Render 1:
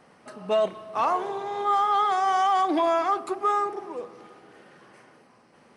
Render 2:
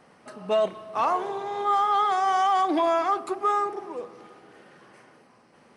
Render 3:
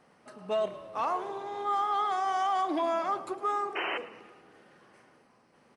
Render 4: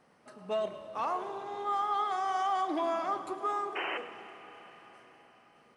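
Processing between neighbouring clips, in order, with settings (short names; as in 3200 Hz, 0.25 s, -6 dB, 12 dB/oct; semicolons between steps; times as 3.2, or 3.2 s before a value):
nothing audible
painted sound noise, 3.75–3.98, 310–3100 Hz -26 dBFS; frequency-shifting echo 0.109 s, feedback 57%, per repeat -40 Hz, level -17 dB; gain -6.5 dB
reverb RT60 5.1 s, pre-delay 29 ms, DRR 11.5 dB; gain -2.5 dB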